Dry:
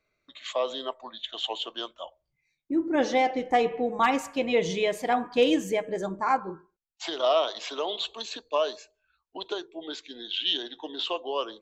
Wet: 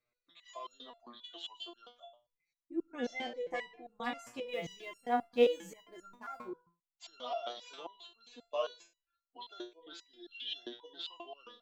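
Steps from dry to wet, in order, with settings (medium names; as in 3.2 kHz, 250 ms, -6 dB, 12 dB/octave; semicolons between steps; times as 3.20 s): 4.46–6.46 s: companding laws mixed up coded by A; 7.79–8.41 s: treble shelf 2.1 kHz -10.5 dB; resonator arpeggio 7.5 Hz 120–1400 Hz; trim +1 dB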